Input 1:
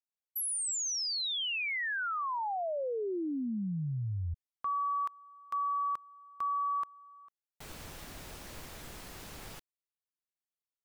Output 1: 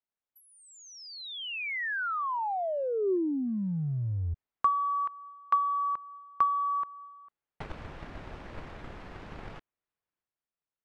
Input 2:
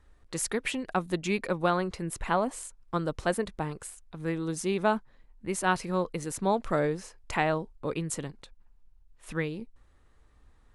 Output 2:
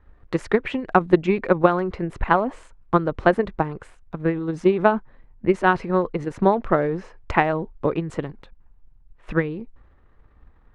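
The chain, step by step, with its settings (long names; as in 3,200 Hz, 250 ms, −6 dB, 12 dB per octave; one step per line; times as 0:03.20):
low-pass filter 2,000 Hz 12 dB per octave
dynamic equaliser 370 Hz, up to +4 dB, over −44 dBFS, Q 4.3
transient designer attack +10 dB, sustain +6 dB
level +3 dB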